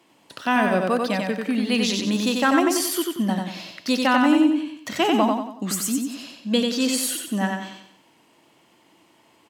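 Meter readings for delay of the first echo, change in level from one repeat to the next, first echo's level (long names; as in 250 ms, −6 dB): 92 ms, −8.0 dB, −3.5 dB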